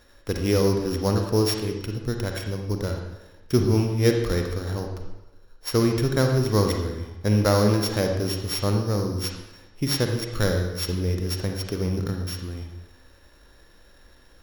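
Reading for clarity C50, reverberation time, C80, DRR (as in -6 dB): 4.0 dB, 1.0 s, 6.5 dB, 3.0 dB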